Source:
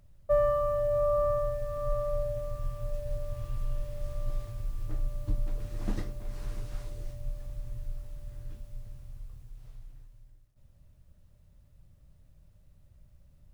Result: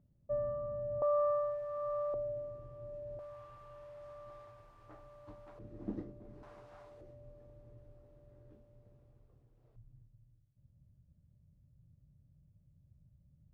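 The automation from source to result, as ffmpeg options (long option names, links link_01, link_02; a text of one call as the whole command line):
ffmpeg -i in.wav -af "asetnsamples=nb_out_samples=441:pad=0,asendcmd='1.02 bandpass f 870;2.14 bandpass f 380;3.19 bandpass f 970;5.59 bandpass f 310;6.43 bandpass f 830;7.01 bandpass f 410;9.76 bandpass f 140',bandpass=frequency=220:width_type=q:width=1.4:csg=0" out.wav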